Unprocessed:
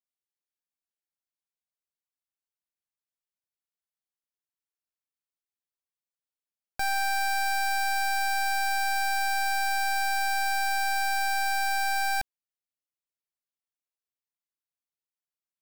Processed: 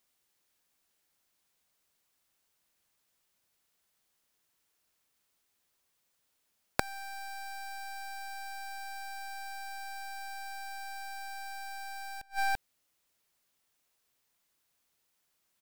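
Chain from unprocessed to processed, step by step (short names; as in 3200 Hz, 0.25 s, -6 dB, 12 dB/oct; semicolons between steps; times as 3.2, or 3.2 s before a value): outdoor echo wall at 58 m, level -19 dB; flipped gate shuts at -41 dBFS, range -33 dB; gain +17.5 dB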